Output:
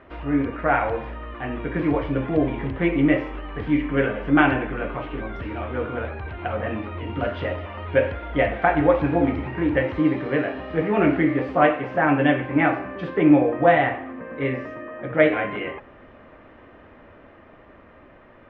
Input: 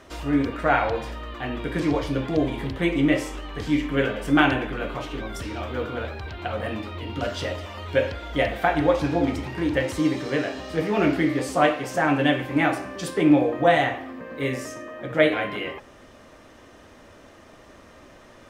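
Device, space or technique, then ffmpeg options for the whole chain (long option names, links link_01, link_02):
action camera in a waterproof case: -af "lowpass=frequency=2500:width=0.5412,lowpass=frequency=2500:width=1.3066,dynaudnorm=framelen=430:gausssize=9:maxgain=3.5dB" -ar 44100 -c:a aac -b:a 96k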